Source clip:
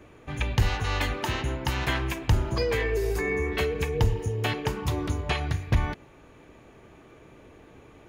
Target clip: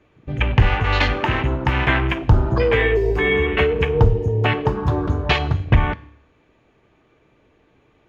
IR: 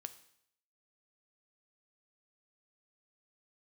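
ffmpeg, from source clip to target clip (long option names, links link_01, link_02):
-filter_complex "[0:a]afwtdn=0.0178,asplit=2[link_01][link_02];[1:a]atrim=start_sample=2205,lowpass=4100,highshelf=frequency=3100:gain=10.5[link_03];[link_02][link_03]afir=irnorm=-1:irlink=0,volume=9.5dB[link_04];[link_01][link_04]amix=inputs=2:normalize=0"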